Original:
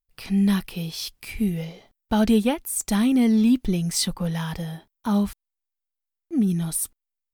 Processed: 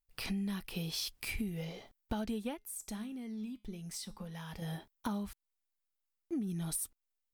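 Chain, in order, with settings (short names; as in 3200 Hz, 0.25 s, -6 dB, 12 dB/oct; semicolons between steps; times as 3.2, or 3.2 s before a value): bell 170 Hz -2.5 dB 0.77 oct; compressor 12:1, threshold -33 dBFS, peak gain reduction 18.5 dB; 2.57–4.62 resonator 210 Hz, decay 0.33 s, harmonics all, mix 60%; gain -1 dB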